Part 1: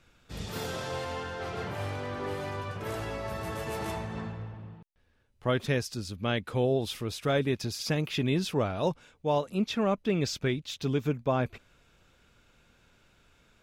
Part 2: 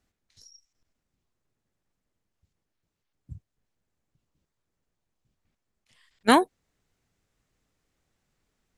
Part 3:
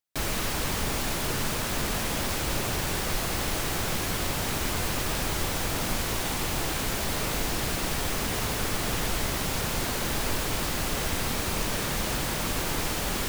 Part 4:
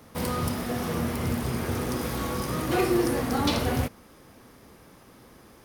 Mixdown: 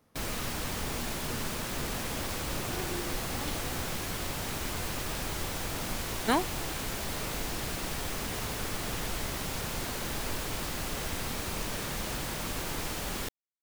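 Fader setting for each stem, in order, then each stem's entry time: mute, -8.5 dB, -6.0 dB, -16.5 dB; mute, 0.00 s, 0.00 s, 0.00 s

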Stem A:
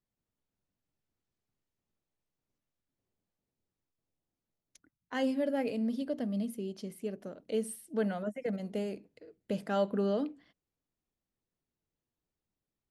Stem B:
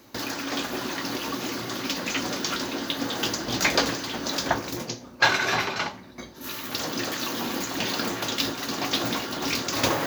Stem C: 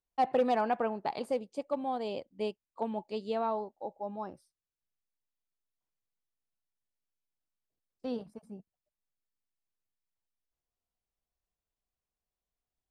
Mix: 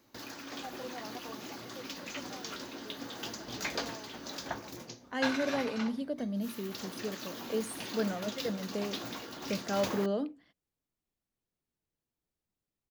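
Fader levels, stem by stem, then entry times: -1.0 dB, -13.5 dB, -17.0 dB; 0.00 s, 0.00 s, 0.45 s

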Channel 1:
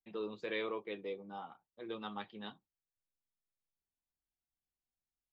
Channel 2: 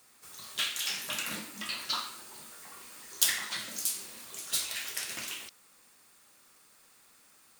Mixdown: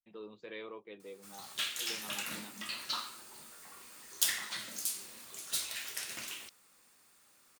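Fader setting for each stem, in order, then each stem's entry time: -7.0 dB, -4.0 dB; 0.00 s, 1.00 s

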